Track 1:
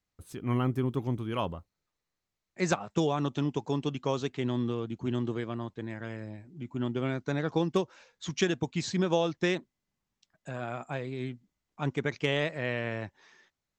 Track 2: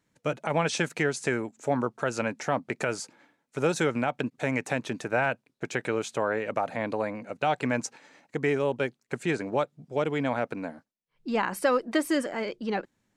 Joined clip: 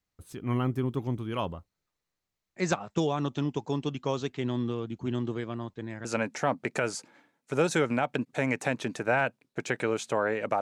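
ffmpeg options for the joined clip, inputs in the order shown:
-filter_complex "[0:a]apad=whole_dur=10.61,atrim=end=10.61,atrim=end=6.052[a];[1:a]atrim=start=2.098:end=6.66[b];[a][b]acrossfade=d=0.004:c1=hsin:c2=hsin"

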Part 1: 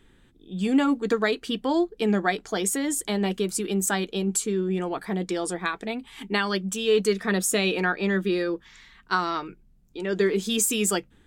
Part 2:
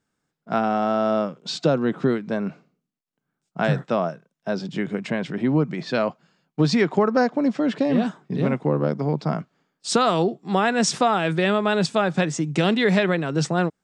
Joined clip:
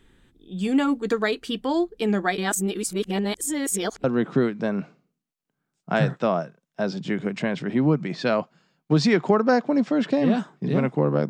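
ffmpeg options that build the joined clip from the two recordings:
-filter_complex "[0:a]apad=whole_dur=11.29,atrim=end=11.29,asplit=2[a][b];[a]atrim=end=2.382[c];[b]atrim=start=2.378:end=4.042,asetpts=PTS-STARTPTS,areverse[d];[1:a]atrim=start=1.718:end=8.97[e];[c][d]acrossfade=d=0.004:c1=hsin:c2=hsin[f];[f][e]acrossfade=d=0.004:c1=hsin:c2=hsin"

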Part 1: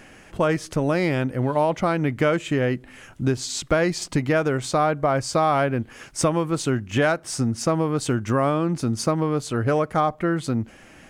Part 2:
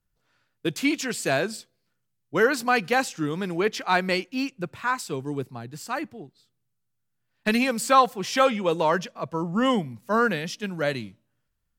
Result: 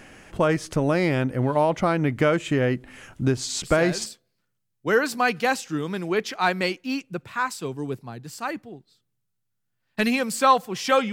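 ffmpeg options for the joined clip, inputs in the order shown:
-filter_complex "[1:a]asplit=2[a][b];[0:a]apad=whole_dur=11.12,atrim=end=11.12,atrim=end=4.062[c];[b]atrim=start=1.538:end=8.6[d];[a]atrim=start=1.11:end=1.54,asetpts=PTS-STARTPTS,volume=-9dB,afade=t=in:d=0.004:c=hsin,afade=t=out:st=0.426:d=0.004:c=hsin,adelay=3630[e];[c][d]acrossfade=d=0.004:c1=hsin:c2=hsin[f];[f][e]amix=inputs=2:normalize=0"

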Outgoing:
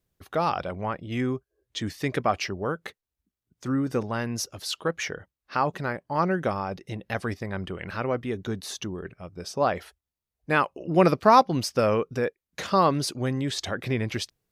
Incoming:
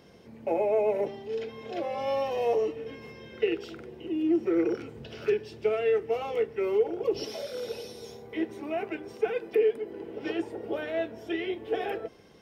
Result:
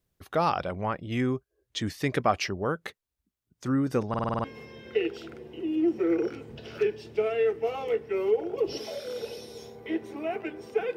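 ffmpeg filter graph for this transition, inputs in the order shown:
-filter_complex "[0:a]apad=whole_dur=10.96,atrim=end=10.96,asplit=7[a][b][c][d][e][f][g];[a]atrim=end=4.142[h];[b]atrim=start=4.088:end=4.142[i];[c]atrim=start=4.088:end=4.142[j];[d]atrim=start=4.088:end=4.142[k];[e]atrim=start=4.088:end=4.142[l];[f]atrim=start=4.088:end=4.142[m];[g]atrim=start=4.088:end=4.142[n];[1:a]atrim=start=2.908:end=9.43[o];[h][i]acrossfade=d=0.004:c1=hsin:c2=hsin[p];[p][j]acrossfade=d=0.004:c1=hsin:c2=hsin[q];[q][k]acrossfade=d=0.004:c1=hsin:c2=hsin[r];[r][l]acrossfade=d=0.004:c1=hsin:c2=hsin[s];[s][m]acrossfade=d=0.004:c1=hsin:c2=hsin[t];[t][n]acrossfade=d=0.004:c1=hsin:c2=hsin[u];[u][o]acrossfade=d=0.004:c1=hsin:c2=hsin"

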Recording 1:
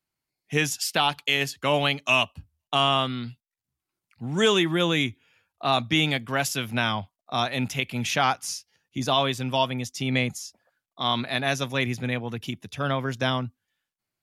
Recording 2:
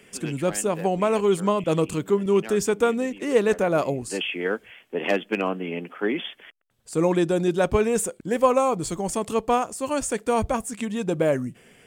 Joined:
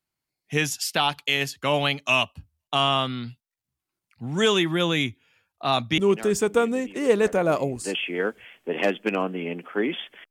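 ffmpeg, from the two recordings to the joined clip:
-filter_complex "[0:a]apad=whole_dur=10.3,atrim=end=10.3,atrim=end=5.982[a];[1:a]atrim=start=2.238:end=6.56[b];[a][b]acrossfade=d=0.004:c1=hsin:c2=hsin"

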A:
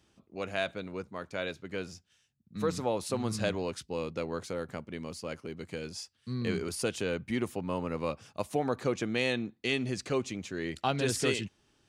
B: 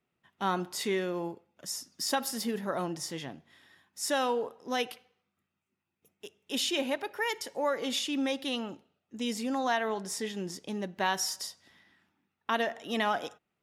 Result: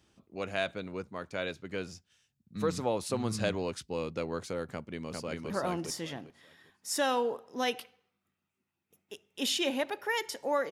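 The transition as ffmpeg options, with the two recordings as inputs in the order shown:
-filter_complex "[0:a]apad=whole_dur=10.71,atrim=end=10.71,atrim=end=5.502[a];[1:a]atrim=start=2.618:end=7.83[b];[a][b]acrossfade=d=0.004:c1=hsin:c2=hsin,asplit=2[c][d];[d]afade=t=in:st=4.73:d=0.01,afade=t=out:st=5.5:d=0.01,aecho=0:1:400|800|1200|1600:0.749894|0.187474|0.0468684|0.0117171[e];[c][e]amix=inputs=2:normalize=0"

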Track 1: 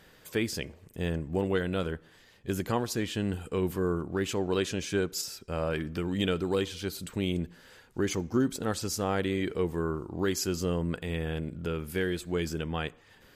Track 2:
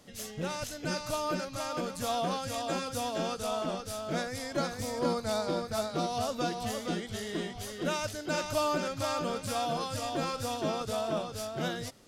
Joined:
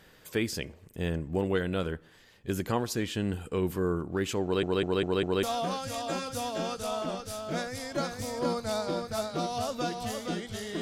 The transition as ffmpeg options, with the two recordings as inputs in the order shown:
-filter_complex "[0:a]apad=whole_dur=10.81,atrim=end=10.81,asplit=5[a][b][c][d][e];[a]atrim=end=4.632[f];[b]atrim=start=4.428:end=4.632[g];[c]atrim=start=4.428:end=4.632[h];[d]atrim=start=4.428:end=4.632[i];[e]atrim=start=4.428:end=4.632[j];[1:a]atrim=start=2.028:end=7.41[k];[f][g]acrossfade=d=0.004:c1=hsin:c2=hsin[l];[l][h]acrossfade=d=0.004:c1=hsin:c2=hsin[m];[m][i]acrossfade=d=0.004:c1=hsin:c2=hsin[n];[n][j]acrossfade=d=0.004:c1=hsin:c2=hsin[o];[o][k]acrossfade=d=0.004:c1=hsin:c2=hsin"

